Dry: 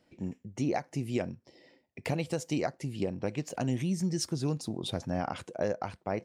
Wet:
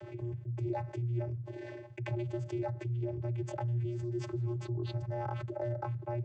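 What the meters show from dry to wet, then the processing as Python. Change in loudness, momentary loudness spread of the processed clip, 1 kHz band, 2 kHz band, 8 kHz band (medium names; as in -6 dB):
-3.0 dB, 5 LU, -4.5 dB, -8.0 dB, under -15 dB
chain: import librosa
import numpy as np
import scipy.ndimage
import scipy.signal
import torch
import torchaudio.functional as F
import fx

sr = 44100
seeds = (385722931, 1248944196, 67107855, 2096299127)

y = scipy.ndimage.median_filter(x, 9, mode='constant')
y = fx.vocoder(y, sr, bands=16, carrier='square', carrier_hz=119.0)
y = fx.env_flatten(y, sr, amount_pct=70)
y = y * 10.0 ** (-7.5 / 20.0)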